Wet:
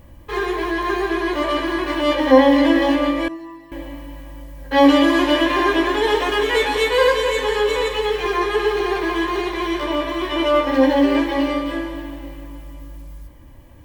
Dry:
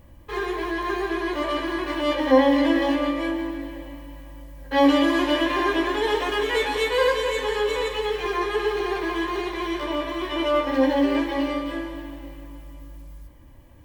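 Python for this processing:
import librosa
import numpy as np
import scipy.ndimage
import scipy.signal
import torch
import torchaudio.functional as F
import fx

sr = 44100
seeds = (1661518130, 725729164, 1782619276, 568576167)

y = fx.stiff_resonator(x, sr, f0_hz=160.0, decay_s=0.42, stiffness=0.002, at=(3.28, 3.72))
y = y * librosa.db_to_amplitude(5.0)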